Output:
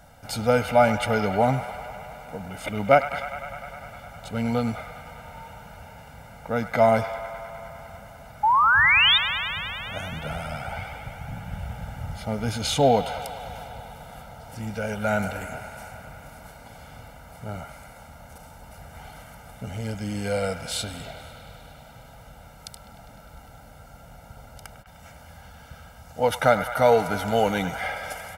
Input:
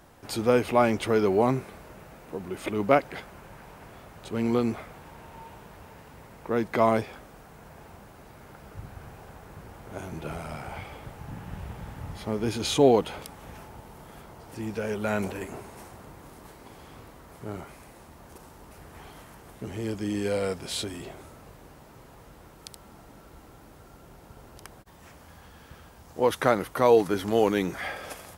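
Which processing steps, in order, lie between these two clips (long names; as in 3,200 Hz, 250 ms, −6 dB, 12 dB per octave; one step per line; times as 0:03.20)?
comb filter 1.4 ms, depth 98%
sound drawn into the spectrogram rise, 0:08.43–0:09.18, 820–3,800 Hz −18 dBFS
on a send: delay with a band-pass on its return 101 ms, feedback 82%, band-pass 1,600 Hz, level −10 dB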